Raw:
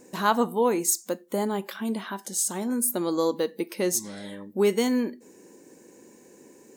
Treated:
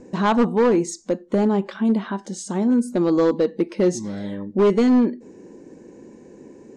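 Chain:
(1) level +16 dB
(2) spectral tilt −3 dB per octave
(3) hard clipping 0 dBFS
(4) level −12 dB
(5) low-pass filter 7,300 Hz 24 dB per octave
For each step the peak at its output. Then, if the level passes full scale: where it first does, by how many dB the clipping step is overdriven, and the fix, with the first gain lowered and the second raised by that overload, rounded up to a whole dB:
+7.0, +8.5, 0.0, −12.0, −11.5 dBFS
step 1, 8.5 dB
step 1 +7 dB, step 4 −3 dB

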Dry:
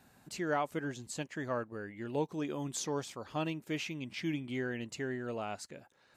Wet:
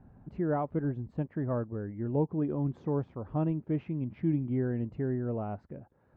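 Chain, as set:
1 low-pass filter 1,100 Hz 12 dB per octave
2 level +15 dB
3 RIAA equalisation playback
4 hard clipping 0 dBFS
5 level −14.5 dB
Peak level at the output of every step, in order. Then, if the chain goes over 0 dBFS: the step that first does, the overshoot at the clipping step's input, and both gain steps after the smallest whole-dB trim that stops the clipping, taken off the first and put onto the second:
−21.5, −6.5, −3.0, −3.0, −17.5 dBFS
no step passes full scale

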